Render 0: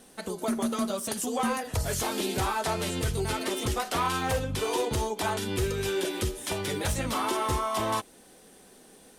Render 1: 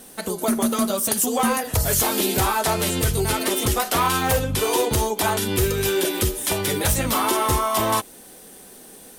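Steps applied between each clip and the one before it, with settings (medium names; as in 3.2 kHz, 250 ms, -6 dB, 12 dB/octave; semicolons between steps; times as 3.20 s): peaking EQ 15 kHz +14.5 dB 0.69 oct; trim +7 dB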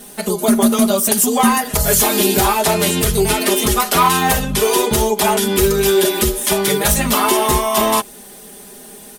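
comb 4.9 ms, depth 98%; trim +3.5 dB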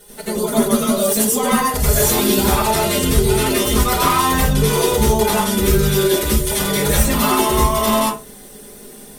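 reverberation RT60 0.30 s, pre-delay 82 ms, DRR -6 dB; trim -10 dB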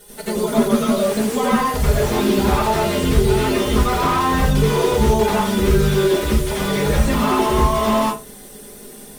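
slew-rate limiter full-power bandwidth 200 Hz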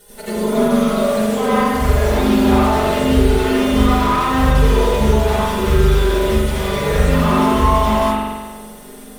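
spring tank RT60 1.4 s, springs 42 ms, chirp 30 ms, DRR -2.5 dB; trim -2.5 dB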